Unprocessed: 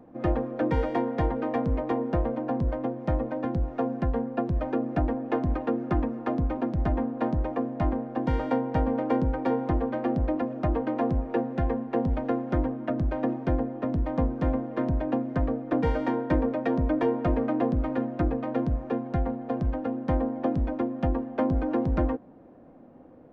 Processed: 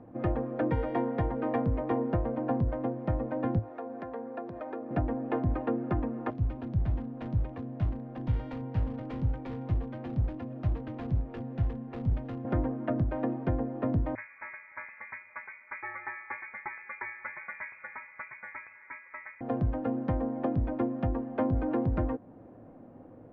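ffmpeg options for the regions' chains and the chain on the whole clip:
ffmpeg -i in.wav -filter_complex "[0:a]asettb=1/sr,asplit=3[link_01][link_02][link_03];[link_01]atrim=end=3.594[link_04];[link_02]atrim=start=3.59:end=4.91,asetpts=PTS-STARTPTS,afade=type=in:duration=0.004:curve=qsin,afade=type=out:start_time=1.316:duration=0.004:curve=qsin,highpass=370,equalizer=frequency=2900:width_type=o:width=0.21:gain=-6,acompressor=threshold=-37dB:ratio=2.5:attack=3.2:release=140:knee=1:detection=peak[link_05];[link_03]atrim=start=4.906[link_06];[link_04][link_05]acrossfade=duration=0.004:curve1=hsin:curve2=qsin[link_07];[link_07][link_06]acrossfade=duration=0.004:curve1=qsin:curve2=hsin,asettb=1/sr,asplit=3[link_08][link_09][link_10];[link_08]atrim=end=6.304[link_11];[link_09]atrim=start=6.3:end=12.45,asetpts=PTS-STARTPTS,afade=type=in:duration=0.004:curve=qsin,afade=type=out:start_time=6.146:duration=0.004:curve=qsin,volume=22.5dB,asoftclip=hard,volume=-22.5dB,acrossover=split=180|3000[link_12][link_13][link_14];[link_13]acompressor=threshold=-45dB:ratio=3:attack=3.2:release=140:knee=2.83:detection=peak[link_15];[link_12][link_15][link_14]amix=inputs=3:normalize=0[link_16];[link_10]atrim=start=12.446[link_17];[link_11][link_16]acrossfade=duration=0.004:curve1=hsin:curve2=qsin[link_18];[link_18][link_17]acrossfade=duration=0.004:curve1=qsin:curve2=hsin,asettb=1/sr,asplit=3[link_19][link_20][link_21];[link_19]atrim=end=14.154[link_22];[link_20]atrim=start=14.15:end=19.41,asetpts=PTS-STARTPTS,afade=type=in:duration=0.004:curve=qsin,afade=type=out:start_time=5.256:duration=0.004:curve=qsin,highpass=1200,lowpass=frequency=2300:width_type=q:width=0.5098,lowpass=frequency=2300:width_type=q:width=0.6013,lowpass=frequency=2300:width_type=q:width=0.9,lowpass=frequency=2300:width_type=q:width=2.563,afreqshift=-2700[link_23];[link_21]atrim=start=19.406[link_24];[link_22][link_23]acrossfade=duration=0.004:curve1=hsin:curve2=qsin[link_25];[link_25][link_24]acrossfade=duration=0.004:curve1=qsin:curve2=hsin,lowpass=2800,equalizer=frequency=110:width=4.4:gain=10.5,alimiter=limit=-19dB:level=0:latency=1:release=365" out.wav

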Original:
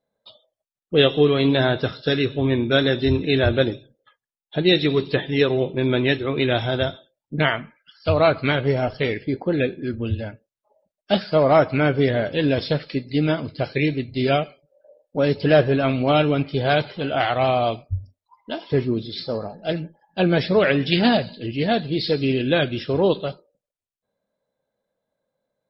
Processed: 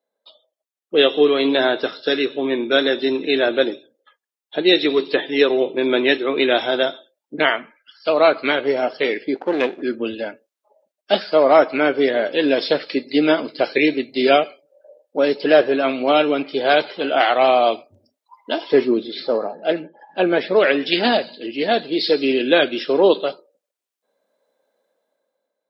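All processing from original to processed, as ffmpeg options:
ffmpeg -i in.wav -filter_complex "[0:a]asettb=1/sr,asplit=3[link_01][link_02][link_03];[link_01]atrim=end=9.354[link_04];[link_02]atrim=start=9.35:end=9.82,asetpts=PTS-STARTPTS,afade=type=in:duration=0.004:curve=qsin,afade=type=out:start_time=0.466:duration=0.004:curve=qsin,aeval=exprs='if(lt(val(0),0),0.251*val(0),val(0))':channel_layout=same,lowpass=4800[link_05];[link_03]atrim=start=9.816[link_06];[link_04][link_05]acrossfade=duration=0.004:curve1=hsin:curve2=qsin[link_07];[link_07][link_06]acrossfade=duration=0.004:curve1=qsin:curve2=hsin,asettb=1/sr,asplit=3[link_08][link_09][link_10];[link_08]atrim=end=18.974[link_11];[link_09]atrim=start=18.97:end=20.56,asetpts=PTS-STARTPTS,afade=type=in:duration=0.004:curve=qsin,afade=type=out:start_time=1.586:duration=0.004:curve=qsin,lowpass=2800,acompressor=mode=upward:threshold=-36dB:ratio=2.5:attack=3.2:release=140:knee=2.83:detection=peak[link_12];[link_10]atrim=start=20.556[link_13];[link_11][link_12]acrossfade=duration=0.004:curve1=hsin:curve2=qsin[link_14];[link_14][link_13]acrossfade=duration=0.004:curve1=qsin:curve2=hsin,highpass=frequency=280:width=0.5412,highpass=frequency=280:width=1.3066,dynaudnorm=framelen=250:gausssize=7:maxgain=11.5dB,volume=-1dB" out.wav

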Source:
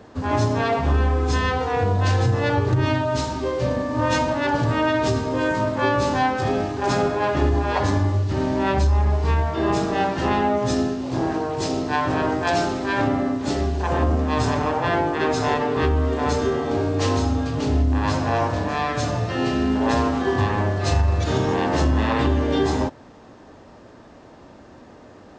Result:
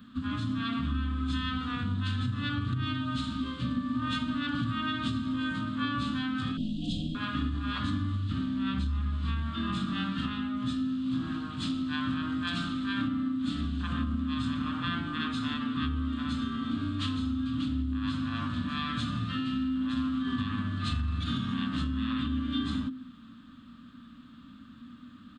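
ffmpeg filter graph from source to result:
ffmpeg -i in.wav -filter_complex "[0:a]asettb=1/sr,asplit=3[link_01][link_02][link_03];[link_01]atrim=end=6.574[link_04];[link_02]atrim=start=6.57:end=7.15,asetpts=PTS-STARTPTS,afade=type=in:duration=0.004:curve=qsin,afade=type=out:start_time=0.576:duration=0.004:curve=qsin,afreqshift=-100,asuperstop=centerf=1400:order=20:qfactor=0.7[link_05];[link_03]atrim=start=7.146[link_06];[link_04][link_05]acrossfade=duration=0.004:curve1=hsin:curve2=qsin[link_07];[link_07][link_06]acrossfade=duration=0.004:curve1=qsin:curve2=hsin,firequalizer=gain_entry='entry(120,0);entry(250,13);entry(360,-20);entry(850,-22);entry(1200,6);entry(2000,-5);entry(3400,11);entry(5700,-14);entry(11000,14)':delay=0.05:min_phase=1,acompressor=threshold=-19dB:ratio=6,bandreject=frequency=51.33:width_type=h:width=4,bandreject=frequency=102.66:width_type=h:width=4,bandreject=frequency=153.99:width_type=h:width=4,bandreject=frequency=205.32:width_type=h:width=4,bandreject=frequency=256.65:width_type=h:width=4,bandreject=frequency=307.98:width_type=h:width=4,bandreject=frequency=359.31:width_type=h:width=4,bandreject=frequency=410.64:width_type=h:width=4,bandreject=frequency=461.97:width_type=h:width=4,bandreject=frequency=513.3:width_type=h:width=4,volume=-7.5dB" out.wav

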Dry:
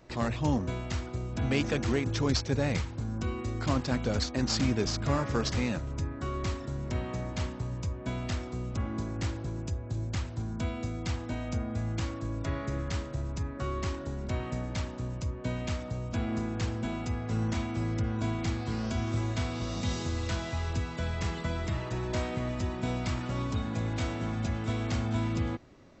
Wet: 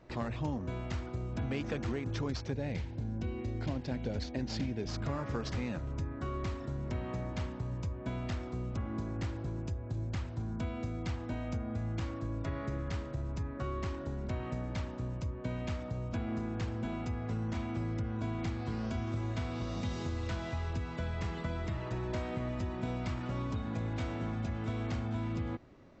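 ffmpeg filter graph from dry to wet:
ffmpeg -i in.wav -filter_complex "[0:a]asettb=1/sr,asplit=3[link_01][link_02][link_03];[link_01]atrim=end=2.524[link_04];[link_02]atrim=start=2.52:end=4.89,asetpts=PTS-STARTPTS,afade=type=in:duration=0.004:curve=qsin,afade=type=out:start_time=2.366:duration=0.004:curve=qsin,lowpass=6200,equalizer=frequency=1200:width_type=o:width=0.51:gain=-13[link_05];[link_03]atrim=start=4.886[link_06];[link_04][link_05]acrossfade=duration=0.004:curve1=hsin:curve2=qsin[link_07];[link_07][link_06]acrossfade=duration=0.004:curve1=qsin:curve2=hsin,lowpass=frequency=2700:poles=1,acompressor=threshold=-30dB:ratio=6,volume=-1.5dB" out.wav

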